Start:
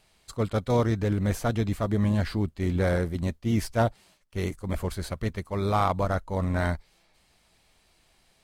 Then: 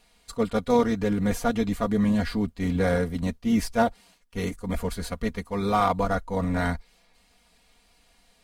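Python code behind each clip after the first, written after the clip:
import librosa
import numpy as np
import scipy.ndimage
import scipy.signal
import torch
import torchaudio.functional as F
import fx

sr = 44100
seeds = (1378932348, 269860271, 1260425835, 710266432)

y = x + 0.83 * np.pad(x, (int(4.2 * sr / 1000.0), 0))[:len(x)]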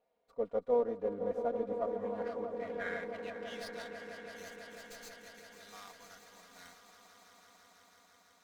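y = fx.filter_sweep_bandpass(x, sr, from_hz=550.0, to_hz=6600.0, start_s=1.67, end_s=4.22, q=3.2)
y = fx.echo_swell(y, sr, ms=165, loudest=5, wet_db=-12.5)
y = fx.running_max(y, sr, window=3)
y = F.gain(torch.from_numpy(y), -4.0).numpy()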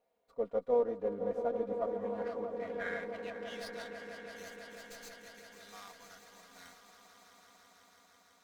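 y = fx.doubler(x, sr, ms=15.0, db=-13.5)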